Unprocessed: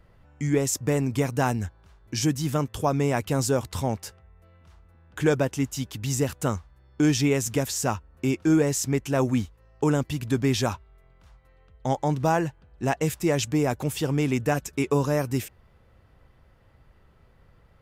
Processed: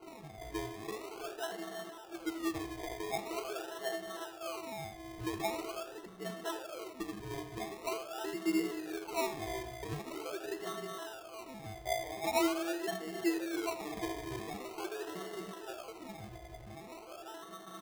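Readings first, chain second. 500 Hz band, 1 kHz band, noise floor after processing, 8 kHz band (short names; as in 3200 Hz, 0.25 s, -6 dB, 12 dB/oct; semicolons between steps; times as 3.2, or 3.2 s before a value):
-11.5 dB, -9.5 dB, -51 dBFS, -15.5 dB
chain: zero-crossing step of -35 dBFS; steep high-pass 360 Hz 48 dB/oct; high shelf 4300 Hz +8 dB; in parallel at -1 dB: negative-ratio compressor -28 dBFS; on the sum: limiter -18 dBFS, peak gain reduction 11.5 dB; octave resonator E, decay 0.24 s; non-linear reverb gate 0.38 s rising, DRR 3 dB; decimation with a swept rate 25×, swing 60% 0.44 Hz; speakerphone echo 80 ms, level -11 dB; mismatched tape noise reduction decoder only; gain +5.5 dB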